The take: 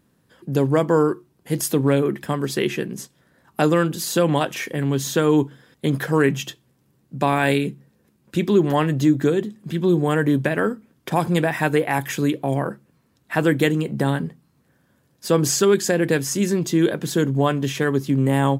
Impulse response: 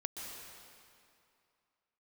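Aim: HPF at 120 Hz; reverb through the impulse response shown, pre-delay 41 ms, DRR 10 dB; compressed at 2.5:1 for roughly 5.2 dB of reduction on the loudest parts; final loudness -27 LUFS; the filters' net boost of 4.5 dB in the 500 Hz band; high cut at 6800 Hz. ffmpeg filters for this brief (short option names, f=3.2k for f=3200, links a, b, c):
-filter_complex "[0:a]highpass=120,lowpass=6.8k,equalizer=f=500:t=o:g=5.5,acompressor=threshold=-17dB:ratio=2.5,asplit=2[a][b];[1:a]atrim=start_sample=2205,adelay=41[c];[b][c]afir=irnorm=-1:irlink=0,volume=-10dB[d];[a][d]amix=inputs=2:normalize=0,volume=-5dB"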